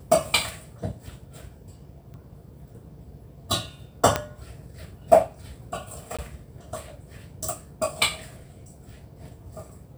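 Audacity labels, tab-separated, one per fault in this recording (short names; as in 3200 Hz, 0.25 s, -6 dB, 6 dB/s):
2.140000	2.140000	pop -33 dBFS
4.160000	4.160000	pop -7 dBFS
6.170000	6.190000	gap 16 ms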